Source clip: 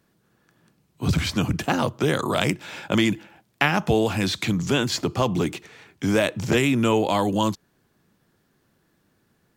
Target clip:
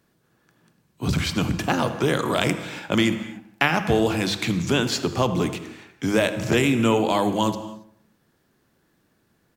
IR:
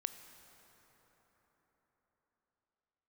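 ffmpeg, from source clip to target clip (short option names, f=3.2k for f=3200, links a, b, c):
-filter_complex "[0:a]bandreject=f=50:t=h:w=6,bandreject=f=100:t=h:w=6,bandreject=f=150:t=h:w=6,bandreject=f=200:t=h:w=6,asplit=2[a][b];[b]adelay=79,lowpass=f=1.9k:p=1,volume=-14dB,asplit=2[c][d];[d]adelay=79,lowpass=f=1.9k:p=1,volume=0.54,asplit=2[e][f];[f]adelay=79,lowpass=f=1.9k:p=1,volume=0.54,asplit=2[g][h];[h]adelay=79,lowpass=f=1.9k:p=1,volume=0.54,asplit=2[i][j];[j]adelay=79,lowpass=f=1.9k:p=1,volume=0.54[k];[a][c][e][g][i][k]amix=inputs=6:normalize=0[l];[1:a]atrim=start_sample=2205,afade=t=out:st=0.34:d=0.01,atrim=end_sample=15435[m];[l][m]afir=irnorm=-1:irlink=0,volume=2dB"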